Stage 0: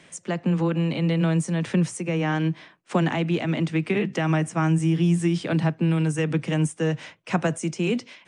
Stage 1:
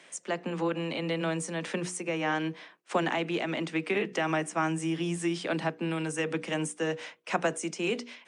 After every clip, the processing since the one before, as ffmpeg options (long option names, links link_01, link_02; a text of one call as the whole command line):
ffmpeg -i in.wav -af "highpass=340,bandreject=frequency=60:width_type=h:width=6,bandreject=frequency=120:width_type=h:width=6,bandreject=frequency=180:width_type=h:width=6,bandreject=frequency=240:width_type=h:width=6,bandreject=frequency=300:width_type=h:width=6,bandreject=frequency=360:width_type=h:width=6,bandreject=frequency=420:width_type=h:width=6,bandreject=frequency=480:width_type=h:width=6,volume=-1.5dB" out.wav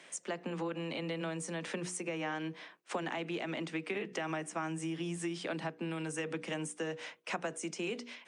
ffmpeg -i in.wav -af "acompressor=threshold=-35dB:ratio=3,volume=-1dB" out.wav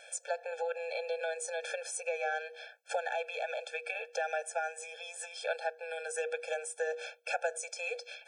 ffmpeg -i in.wav -af "afftfilt=real='re*eq(mod(floor(b*sr/1024/450),2),1)':imag='im*eq(mod(floor(b*sr/1024/450),2),1)':win_size=1024:overlap=0.75,volume=6dB" out.wav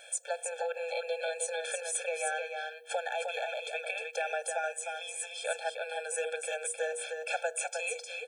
ffmpeg -i in.wav -af "aecho=1:1:308:0.562,aexciter=amount=1.3:drive=5.2:freq=2900" out.wav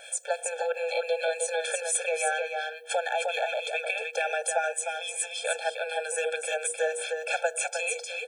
ffmpeg -i in.wav -filter_complex "[0:a]acrossover=split=1600[link_01][link_02];[link_01]aeval=exprs='val(0)*(1-0.5/2+0.5/2*cos(2*PI*7*n/s))':channel_layout=same[link_03];[link_02]aeval=exprs='val(0)*(1-0.5/2-0.5/2*cos(2*PI*7*n/s))':channel_layout=same[link_04];[link_03][link_04]amix=inputs=2:normalize=0,volume=8dB" out.wav